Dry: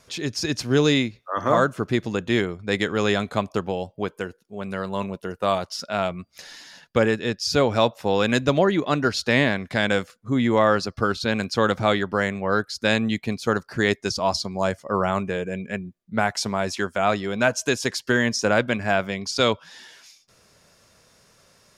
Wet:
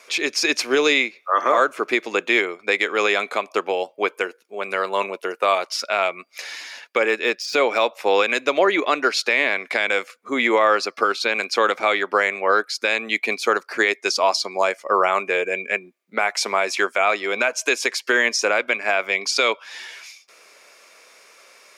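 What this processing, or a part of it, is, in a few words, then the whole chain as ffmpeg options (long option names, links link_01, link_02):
laptop speaker: -filter_complex "[0:a]highpass=frequency=350:width=0.5412,highpass=frequency=350:width=1.3066,equalizer=frequency=1200:width_type=o:width=0.36:gain=4,equalizer=frequency=2300:width_type=o:width=0.37:gain=12,alimiter=limit=-12.5dB:level=0:latency=1:release=286,asettb=1/sr,asplit=3[link_01][link_02][link_03];[link_01]atrim=end=7.024[link_04];[link_02]atrim=start=7.02:end=8.03,asetpts=PTS-STARTPTS,afade=type=in:duration=0.004:curve=qsin,afade=type=out:start_time=1.006:duration=0.004:curve=qsin,deesser=0.7[link_05];[link_03]atrim=start=8.026[link_06];[link_04][link_05]acrossfade=duration=0.004:curve1=hsin:curve2=qsin[link_07];[link_07][link_06]acrossfade=duration=0.004:curve1=qsin:curve2=hsin,volume=6dB"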